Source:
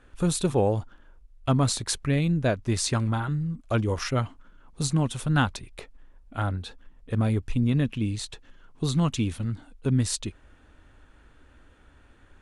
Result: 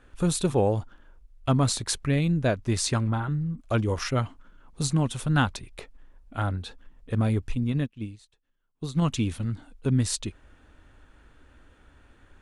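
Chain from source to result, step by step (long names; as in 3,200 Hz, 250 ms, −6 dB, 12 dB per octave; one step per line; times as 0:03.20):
0:02.99–0:03.58: high-shelf EQ 3,200 Hz −9 dB
0:07.55–0:09.02: expander for the loud parts 2.5 to 1, over −37 dBFS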